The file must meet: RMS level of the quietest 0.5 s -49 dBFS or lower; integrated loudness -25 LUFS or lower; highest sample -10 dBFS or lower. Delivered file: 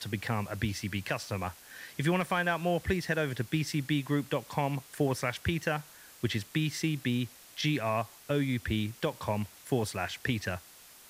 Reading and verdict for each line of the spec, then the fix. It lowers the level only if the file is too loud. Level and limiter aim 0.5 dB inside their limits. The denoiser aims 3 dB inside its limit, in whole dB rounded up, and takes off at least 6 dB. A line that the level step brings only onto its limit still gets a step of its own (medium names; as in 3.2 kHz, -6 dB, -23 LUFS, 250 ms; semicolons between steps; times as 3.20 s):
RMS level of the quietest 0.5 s -54 dBFS: pass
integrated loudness -32.5 LUFS: pass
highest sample -16.0 dBFS: pass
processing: none needed